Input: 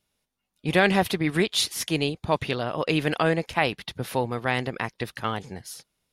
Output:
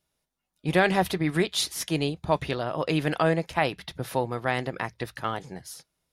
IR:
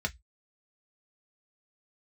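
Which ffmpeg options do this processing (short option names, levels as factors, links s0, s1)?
-filter_complex "[0:a]asplit=2[s0][s1];[1:a]atrim=start_sample=2205,lowpass=6800[s2];[s1][s2]afir=irnorm=-1:irlink=0,volume=0.168[s3];[s0][s3]amix=inputs=2:normalize=0,volume=0.794"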